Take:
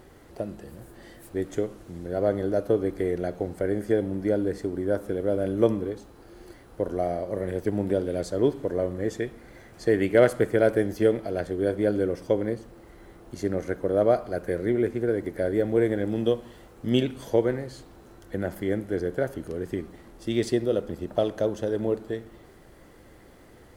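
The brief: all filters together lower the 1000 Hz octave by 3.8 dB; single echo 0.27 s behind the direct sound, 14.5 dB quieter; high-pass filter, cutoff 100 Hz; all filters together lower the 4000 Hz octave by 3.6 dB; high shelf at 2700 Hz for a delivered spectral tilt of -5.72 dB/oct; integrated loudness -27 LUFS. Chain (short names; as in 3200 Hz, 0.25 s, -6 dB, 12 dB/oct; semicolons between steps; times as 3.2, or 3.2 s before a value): HPF 100 Hz; bell 1000 Hz -7 dB; high shelf 2700 Hz +5 dB; bell 4000 Hz -8.5 dB; echo 0.27 s -14.5 dB; gain +1 dB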